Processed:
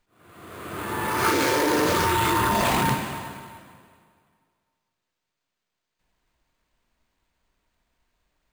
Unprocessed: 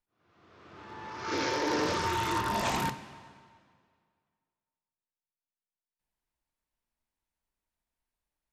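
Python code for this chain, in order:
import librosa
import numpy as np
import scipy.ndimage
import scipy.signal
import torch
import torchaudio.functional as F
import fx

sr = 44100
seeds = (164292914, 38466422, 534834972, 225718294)

p1 = fx.notch(x, sr, hz=850.0, q=12.0)
p2 = fx.over_compress(p1, sr, threshold_db=-36.0, ratio=-0.5)
p3 = p1 + (p2 * 10.0 ** (2.0 / 20.0))
p4 = np.repeat(scipy.signal.resample_poly(p3, 1, 4), 4)[:len(p3)]
y = p4 * 10.0 ** (6.0 / 20.0)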